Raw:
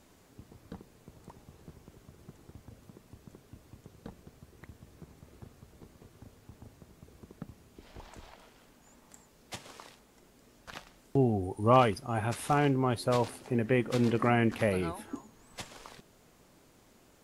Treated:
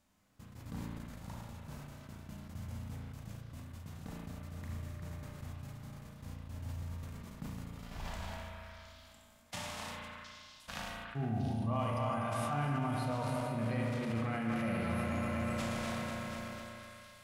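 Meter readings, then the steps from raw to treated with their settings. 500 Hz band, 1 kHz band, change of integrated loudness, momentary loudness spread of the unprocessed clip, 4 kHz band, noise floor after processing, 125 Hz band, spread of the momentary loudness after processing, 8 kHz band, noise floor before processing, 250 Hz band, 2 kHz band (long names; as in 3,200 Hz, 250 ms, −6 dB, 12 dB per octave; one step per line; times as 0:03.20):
−9.5 dB, −6.5 dB, −11.0 dB, 21 LU, −2.5 dB, −58 dBFS, −2.5 dB, 15 LU, −2.5 dB, −62 dBFS, −4.5 dB, −3.5 dB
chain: feedback delay that plays each chunk backwards 123 ms, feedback 84%, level −10.5 dB
brickwall limiter −20.5 dBFS, peak gain reduction 10 dB
parametric band 390 Hz −11.5 dB 0.77 octaves
harmonic and percussive parts rebalanced percussive −12 dB
noise gate −57 dBFS, range −18 dB
reversed playback
downward compressor 6 to 1, threshold −45 dBFS, peak gain reduction 15.5 dB
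reversed playback
hum removal 59.26 Hz, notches 2
on a send: echo through a band-pass that steps 357 ms, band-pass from 1,600 Hz, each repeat 1.4 octaves, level −7 dB
on the sum: spring reverb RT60 1.5 s, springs 35 ms, chirp 40 ms, DRR 1 dB
level that may fall only so fast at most 20 dB per second
level +9 dB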